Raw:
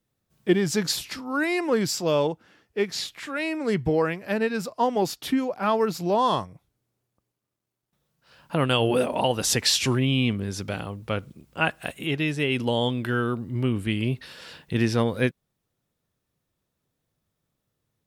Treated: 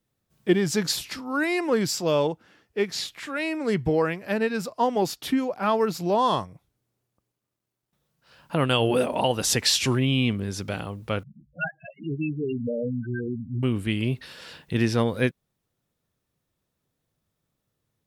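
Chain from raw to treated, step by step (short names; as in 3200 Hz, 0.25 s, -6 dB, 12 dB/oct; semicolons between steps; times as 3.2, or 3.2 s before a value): 11.23–13.63 loudest bins only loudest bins 4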